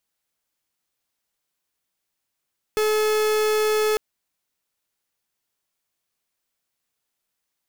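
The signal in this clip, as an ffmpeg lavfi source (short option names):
-f lavfi -i "aevalsrc='0.0944*(2*lt(mod(429*t,1),0.44)-1)':d=1.2:s=44100"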